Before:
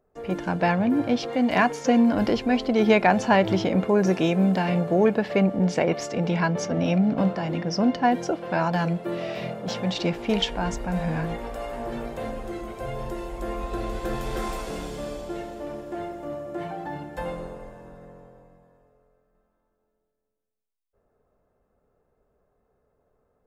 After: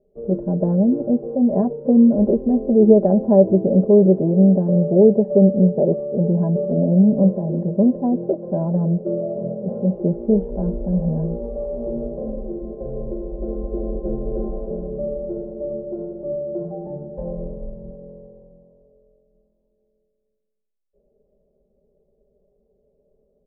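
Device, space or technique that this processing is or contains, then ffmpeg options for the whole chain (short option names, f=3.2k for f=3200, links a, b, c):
under water: -filter_complex "[0:a]aecho=1:1:5:0.96,asettb=1/sr,asplit=3[a][b][c];[a]atrim=end=17.204[d];[b]atrim=start=17.2:end=17.91,asetpts=PTS-STARTPTS,afade=t=in:d=0.004:c=qsin,afade=t=out:st=0.706:d=0.004:c=qsin,asubboost=boost=10:cutoff=210[e];[c]atrim=start=17.906[f];[d][e]acrossfade=d=0.004:c1=hsin:c2=qsin[g];[g][f]acrossfade=d=0.004:c1=qsin:c2=hsin,lowpass=f=530:w=0.5412,lowpass=f=530:w=1.3066,equalizer=f=550:t=o:w=0.48:g=8,volume=2dB"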